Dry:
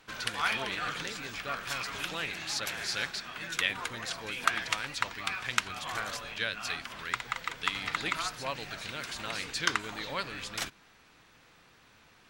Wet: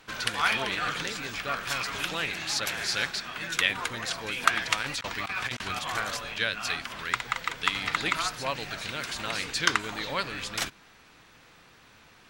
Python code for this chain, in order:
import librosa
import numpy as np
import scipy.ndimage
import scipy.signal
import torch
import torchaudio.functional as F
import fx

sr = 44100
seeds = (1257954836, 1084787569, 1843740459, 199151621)

y = fx.over_compress(x, sr, threshold_db=-37.0, ratio=-0.5, at=(4.8, 5.79))
y = y * librosa.db_to_amplitude(4.5)